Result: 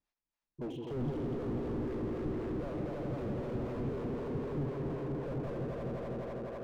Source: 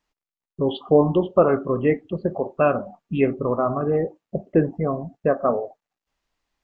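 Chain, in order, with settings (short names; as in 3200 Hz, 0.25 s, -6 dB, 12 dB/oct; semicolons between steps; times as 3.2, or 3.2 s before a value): repeated pitch sweeps -4 st, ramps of 0.175 s; swelling echo 83 ms, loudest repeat 5, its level -6.5 dB; harmonic tremolo 3.9 Hz, depth 70%, crossover 450 Hz; slew limiter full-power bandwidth 15 Hz; gain -8 dB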